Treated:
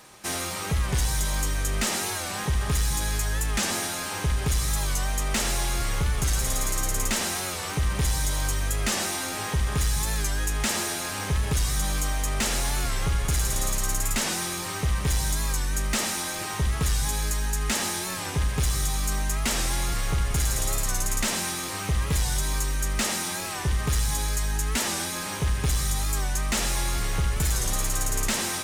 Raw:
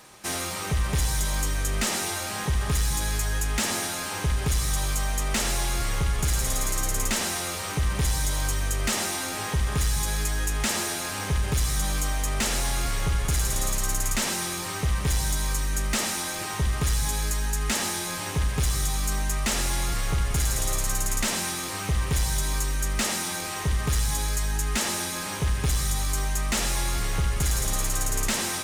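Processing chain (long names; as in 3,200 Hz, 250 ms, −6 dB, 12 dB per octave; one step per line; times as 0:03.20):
wow of a warped record 45 rpm, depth 100 cents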